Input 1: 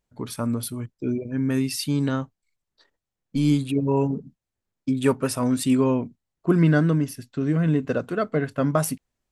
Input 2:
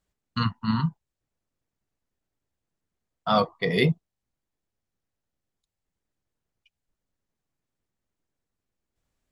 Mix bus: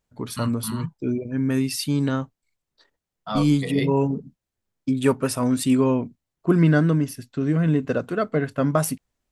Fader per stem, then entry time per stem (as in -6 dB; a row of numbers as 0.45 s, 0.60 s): +1.0 dB, -6.5 dB; 0.00 s, 0.00 s